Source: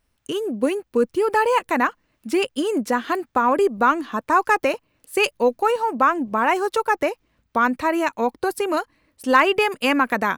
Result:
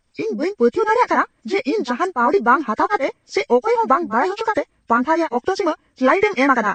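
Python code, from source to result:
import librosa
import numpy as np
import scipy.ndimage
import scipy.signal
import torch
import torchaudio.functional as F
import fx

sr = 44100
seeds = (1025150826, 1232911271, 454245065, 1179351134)

y = fx.freq_compress(x, sr, knee_hz=1500.0, ratio=1.5)
y = fx.stretch_grains(y, sr, factor=0.65, grain_ms=186.0)
y = y * 10.0 ** (4.5 / 20.0)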